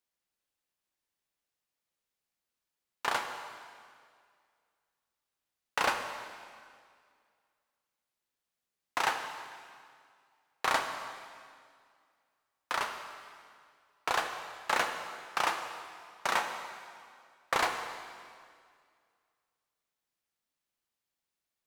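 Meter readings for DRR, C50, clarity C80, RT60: 5.0 dB, 6.5 dB, 7.5 dB, 2.1 s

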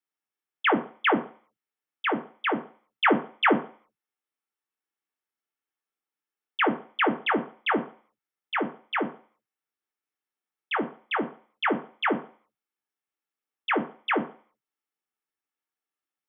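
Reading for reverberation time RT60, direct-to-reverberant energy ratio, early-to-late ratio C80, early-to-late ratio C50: 0.45 s, 5.0 dB, 18.5 dB, 14.0 dB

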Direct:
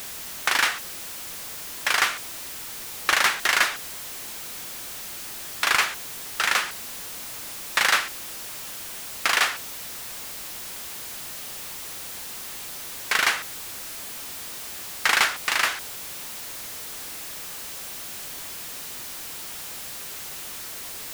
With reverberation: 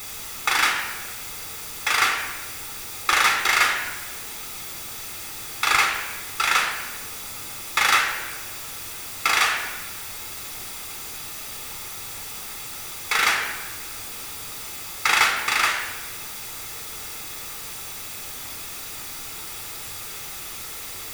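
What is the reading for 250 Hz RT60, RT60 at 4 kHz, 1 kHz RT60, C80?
1.5 s, 0.85 s, 1.1 s, 7.5 dB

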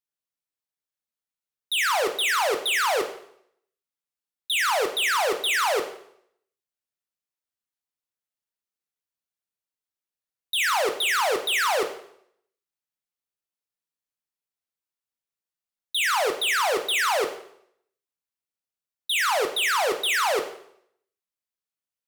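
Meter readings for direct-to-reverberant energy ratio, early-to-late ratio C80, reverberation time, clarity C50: 5.5 dB, 12.5 dB, 0.70 s, 9.5 dB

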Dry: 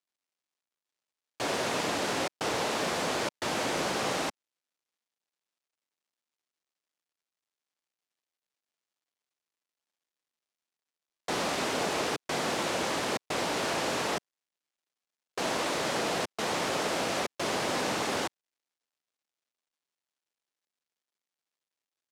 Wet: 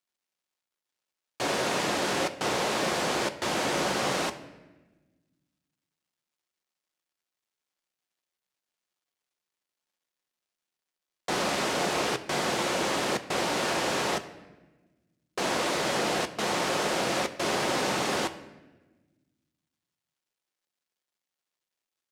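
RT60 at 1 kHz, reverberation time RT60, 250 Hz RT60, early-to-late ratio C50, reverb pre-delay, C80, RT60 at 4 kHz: 1.1 s, 1.2 s, 1.9 s, 14.0 dB, 5 ms, 15.5 dB, 0.85 s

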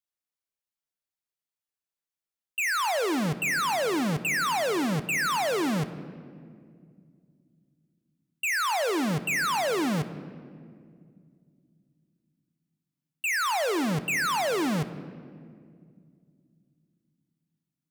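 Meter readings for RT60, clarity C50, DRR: 2.2 s, 13.0 dB, 11.5 dB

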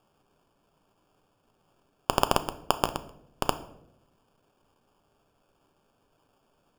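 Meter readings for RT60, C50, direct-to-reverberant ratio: 0.75 s, 15.0 dB, 10.0 dB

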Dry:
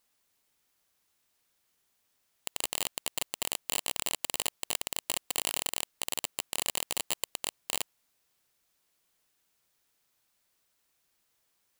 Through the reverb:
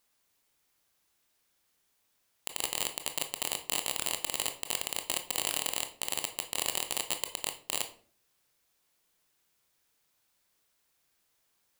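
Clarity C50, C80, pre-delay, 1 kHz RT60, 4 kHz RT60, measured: 12.0 dB, 16.0 dB, 19 ms, 0.40 s, 0.30 s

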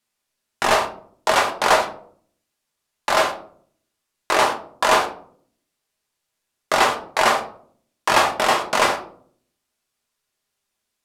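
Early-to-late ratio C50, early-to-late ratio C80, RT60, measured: 10.5 dB, 16.0 dB, 0.55 s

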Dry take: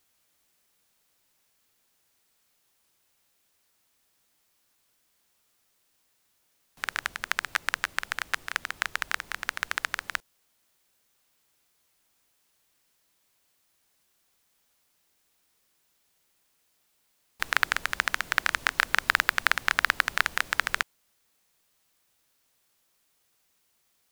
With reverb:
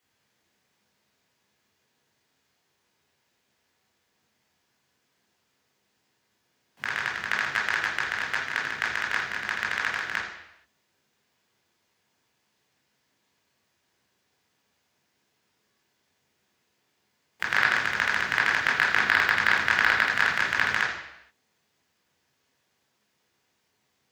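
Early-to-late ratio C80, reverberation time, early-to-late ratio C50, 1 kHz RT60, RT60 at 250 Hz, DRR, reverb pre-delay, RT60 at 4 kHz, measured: 6.0 dB, 0.80 s, 3.0 dB, 0.85 s, 0.80 s, −4.5 dB, 18 ms, 0.80 s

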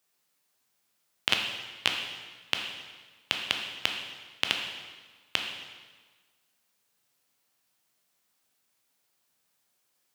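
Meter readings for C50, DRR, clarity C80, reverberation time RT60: 4.5 dB, 2.0 dB, 6.0 dB, 1.4 s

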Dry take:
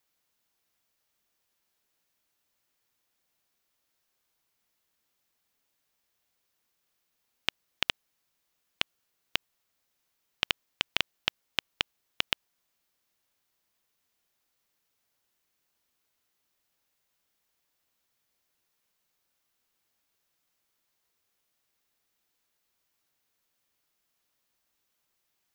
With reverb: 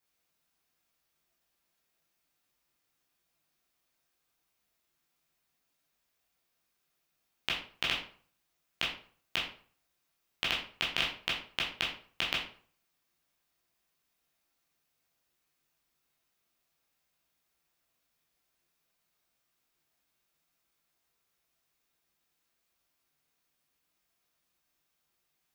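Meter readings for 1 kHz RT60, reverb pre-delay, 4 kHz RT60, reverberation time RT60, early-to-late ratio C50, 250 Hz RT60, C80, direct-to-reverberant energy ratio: 0.45 s, 12 ms, 0.35 s, 0.50 s, 5.5 dB, 0.45 s, 10.0 dB, −5.5 dB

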